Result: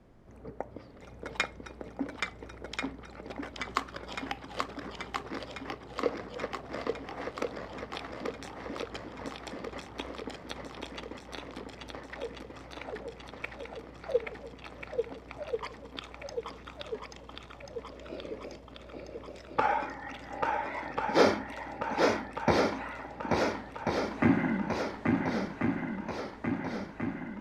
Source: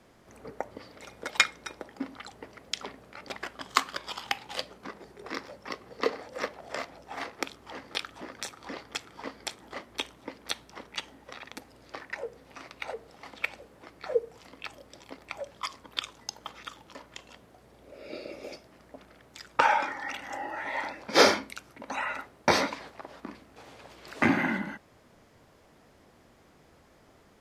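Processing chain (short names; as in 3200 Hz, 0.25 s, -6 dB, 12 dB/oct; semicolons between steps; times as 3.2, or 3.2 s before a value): tilt -3 dB/oct; swung echo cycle 1.388 s, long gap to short 1.5:1, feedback 59%, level -3.5 dB; record warp 45 rpm, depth 100 cents; gain -5 dB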